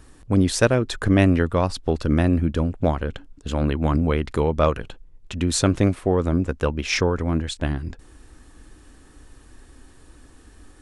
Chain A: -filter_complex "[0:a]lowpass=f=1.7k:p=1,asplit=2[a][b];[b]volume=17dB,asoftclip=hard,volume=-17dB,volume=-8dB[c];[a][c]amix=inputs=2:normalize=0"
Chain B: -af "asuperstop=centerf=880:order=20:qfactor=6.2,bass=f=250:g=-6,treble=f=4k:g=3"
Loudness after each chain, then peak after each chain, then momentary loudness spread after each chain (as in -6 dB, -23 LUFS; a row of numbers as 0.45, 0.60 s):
-20.5, -24.0 LUFS; -2.5, -4.5 dBFS; 8, 11 LU